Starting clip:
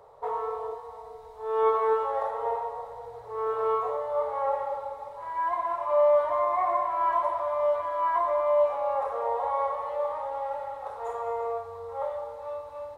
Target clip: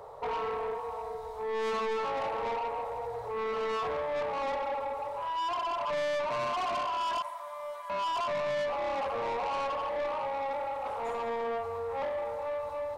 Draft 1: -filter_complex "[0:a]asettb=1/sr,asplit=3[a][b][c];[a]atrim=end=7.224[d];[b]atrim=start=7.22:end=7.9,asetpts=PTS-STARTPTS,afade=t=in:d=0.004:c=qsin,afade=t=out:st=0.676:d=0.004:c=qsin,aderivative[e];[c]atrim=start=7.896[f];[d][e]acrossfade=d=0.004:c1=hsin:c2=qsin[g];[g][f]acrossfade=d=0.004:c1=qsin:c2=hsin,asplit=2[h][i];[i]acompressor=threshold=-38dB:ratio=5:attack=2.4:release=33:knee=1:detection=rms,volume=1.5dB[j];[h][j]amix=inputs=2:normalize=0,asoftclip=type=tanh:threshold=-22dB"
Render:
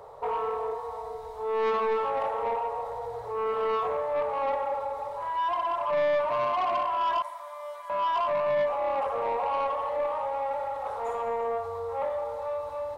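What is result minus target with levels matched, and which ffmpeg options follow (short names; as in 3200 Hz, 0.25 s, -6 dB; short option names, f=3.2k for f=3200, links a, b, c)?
soft clip: distortion -6 dB
-filter_complex "[0:a]asettb=1/sr,asplit=3[a][b][c];[a]atrim=end=7.224[d];[b]atrim=start=7.22:end=7.9,asetpts=PTS-STARTPTS,afade=t=in:d=0.004:c=qsin,afade=t=out:st=0.676:d=0.004:c=qsin,aderivative[e];[c]atrim=start=7.896[f];[d][e]acrossfade=d=0.004:c1=hsin:c2=qsin[g];[g][f]acrossfade=d=0.004:c1=qsin:c2=hsin,asplit=2[h][i];[i]acompressor=threshold=-38dB:ratio=5:attack=2.4:release=33:knee=1:detection=rms,volume=1.5dB[j];[h][j]amix=inputs=2:normalize=0,asoftclip=type=tanh:threshold=-29.5dB"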